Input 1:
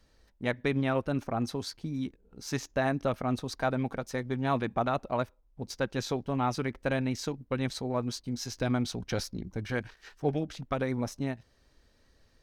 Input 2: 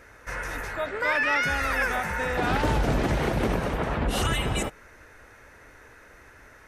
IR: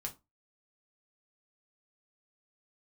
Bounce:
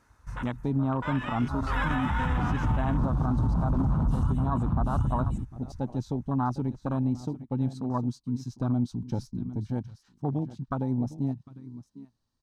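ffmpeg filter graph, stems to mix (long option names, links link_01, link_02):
-filter_complex "[0:a]volume=-2.5dB,asplit=3[link_01][link_02][link_03];[link_02]volume=-13.5dB[link_04];[1:a]asubboost=boost=6:cutoff=180,tremolo=f=1:d=0.48,volume=0.5dB,asplit=2[link_05][link_06];[link_06]volume=-10dB[link_07];[link_03]apad=whole_len=294348[link_08];[link_05][link_08]sidechaincompress=threshold=-39dB:ratio=16:attack=24:release=324[link_09];[link_04][link_07]amix=inputs=2:normalize=0,aecho=0:1:753:1[link_10];[link_01][link_09][link_10]amix=inputs=3:normalize=0,afwtdn=0.02,equalizer=frequency=125:width_type=o:width=1:gain=7,equalizer=frequency=250:width_type=o:width=1:gain=7,equalizer=frequency=500:width_type=o:width=1:gain=-8,equalizer=frequency=1000:width_type=o:width=1:gain=11,equalizer=frequency=2000:width_type=o:width=1:gain=-8,equalizer=frequency=4000:width_type=o:width=1:gain=4,equalizer=frequency=8000:width_type=o:width=1:gain=7,alimiter=limit=-18dB:level=0:latency=1:release=61"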